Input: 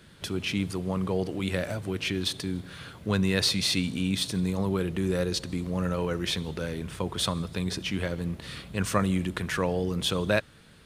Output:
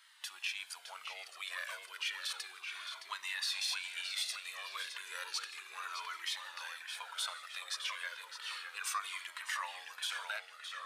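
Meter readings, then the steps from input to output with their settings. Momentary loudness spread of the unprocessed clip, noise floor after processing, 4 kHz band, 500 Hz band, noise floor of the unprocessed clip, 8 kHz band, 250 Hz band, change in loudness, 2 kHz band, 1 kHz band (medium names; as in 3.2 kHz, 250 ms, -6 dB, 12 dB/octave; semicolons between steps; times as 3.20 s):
8 LU, -56 dBFS, -7.0 dB, -29.5 dB, -53 dBFS, -6.5 dB, under -40 dB, -11.0 dB, -5.0 dB, -7.0 dB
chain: high-pass 1.1 kHz 24 dB/octave; peak limiter -23.5 dBFS, peak gain reduction 10.5 dB; tape echo 615 ms, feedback 68%, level -4.5 dB, low-pass 4.3 kHz; Shepard-style flanger falling 0.32 Hz; trim +1 dB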